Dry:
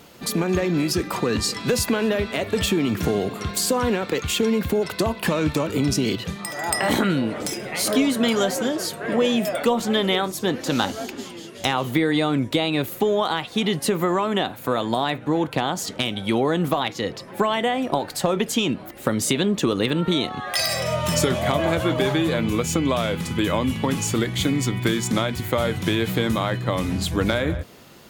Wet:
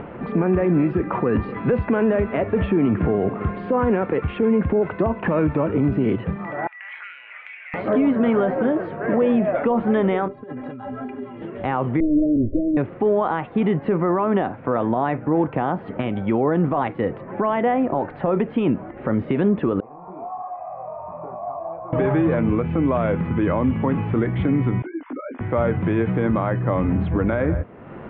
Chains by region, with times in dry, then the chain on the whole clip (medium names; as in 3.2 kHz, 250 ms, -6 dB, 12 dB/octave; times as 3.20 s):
6.67–7.74 s: ladder high-pass 2.1 kHz, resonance 60% + distance through air 220 m
10.28–11.42 s: inharmonic resonator 120 Hz, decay 0.23 s, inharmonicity 0.03 + compressor with a negative ratio -38 dBFS
12.00–12.77 s: comb filter that takes the minimum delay 3.2 ms + steep low-pass 600 Hz 96 dB/octave + bass shelf 130 Hz +7.5 dB
19.80–21.93 s: one-bit delta coder 64 kbps, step -20.5 dBFS + chorus 2 Hz, delay 17 ms + cascade formant filter a
24.82–25.41 s: formants replaced by sine waves + compression 3:1, threshold -34 dBFS + detune thickener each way 18 cents
whole clip: Bessel low-pass 1.3 kHz, order 8; upward compressor, threshold -31 dBFS; peak limiter -16 dBFS; trim +5 dB